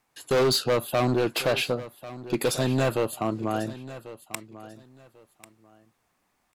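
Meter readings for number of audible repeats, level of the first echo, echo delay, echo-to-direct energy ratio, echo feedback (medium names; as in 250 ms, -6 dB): 2, -16.0 dB, 1093 ms, -16.0 dB, 22%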